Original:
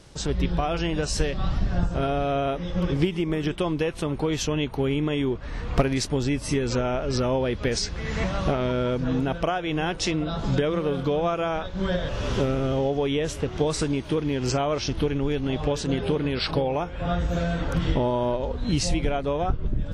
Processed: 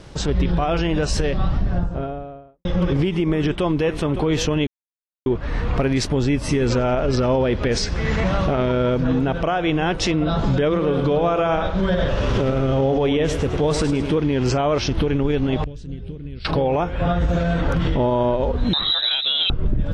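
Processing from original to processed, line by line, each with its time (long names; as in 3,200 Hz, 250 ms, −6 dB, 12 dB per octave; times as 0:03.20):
0:01.03–0:02.65: fade out and dull
0:03.31–0:03.98: delay throw 560 ms, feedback 35%, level −14 dB
0:04.67–0:05.26: silence
0:06.35–0:09.80: repeating echo 90 ms, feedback 55%, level −21 dB
0:10.68–0:14.12: repeating echo 104 ms, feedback 39%, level −10 dB
0:15.64–0:16.45: guitar amp tone stack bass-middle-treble 10-0-1
0:18.73–0:19.50: voice inversion scrambler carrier 3,900 Hz
whole clip: high-shelf EQ 5,200 Hz −11.5 dB; brickwall limiter −20.5 dBFS; level +9 dB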